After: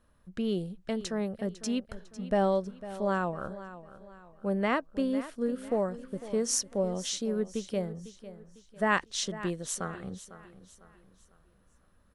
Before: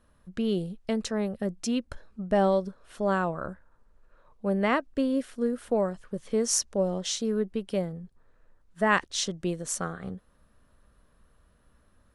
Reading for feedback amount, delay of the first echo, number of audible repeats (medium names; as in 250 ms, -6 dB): 39%, 501 ms, 3